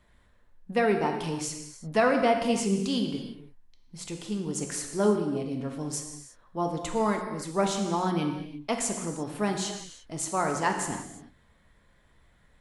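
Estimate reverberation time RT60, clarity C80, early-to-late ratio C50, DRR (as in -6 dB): not exponential, 7.0 dB, 5.5 dB, 3.0 dB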